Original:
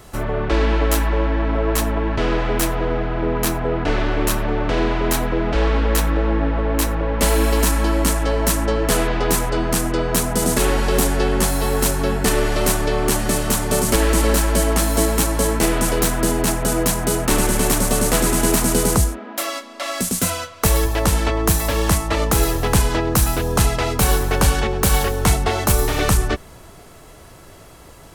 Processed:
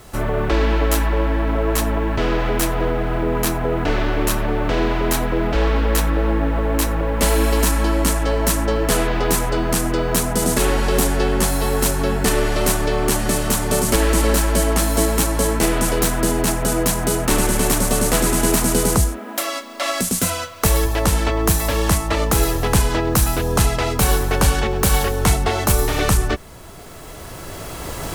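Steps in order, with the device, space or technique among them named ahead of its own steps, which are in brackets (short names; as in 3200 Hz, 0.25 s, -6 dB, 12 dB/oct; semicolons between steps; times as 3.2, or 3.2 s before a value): cheap recorder with automatic gain (white noise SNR 38 dB; recorder AGC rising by 9 dB/s)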